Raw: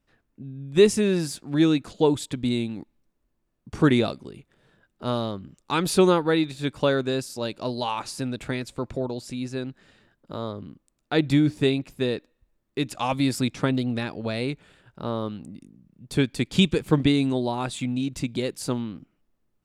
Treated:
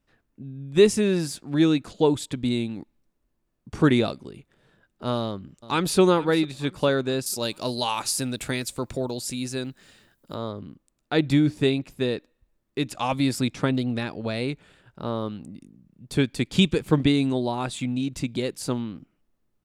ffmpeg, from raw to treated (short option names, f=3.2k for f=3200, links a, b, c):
-filter_complex "[0:a]asplit=2[a][b];[b]afade=t=in:st=5.17:d=0.01,afade=t=out:st=5.99:d=0.01,aecho=0:1:450|900|1350|1800:0.141254|0.0635642|0.0286039|0.0128717[c];[a][c]amix=inputs=2:normalize=0,asettb=1/sr,asplit=3[d][e][f];[d]atrim=end=7.264[g];[e]atrim=start=7.26:end=10.35,asetpts=PTS-STARTPTS,afade=t=in:d=0.004:c=qsin,afade=t=out:st=3.086:d=0.004:c=qsin,aemphasis=mode=production:type=75kf[h];[f]atrim=start=10.346[i];[g][h]acrossfade=d=0.004:c1=hsin:c2=qsin[j];[j][i]acrossfade=d=0.004:c1=qsin:c2=hsin"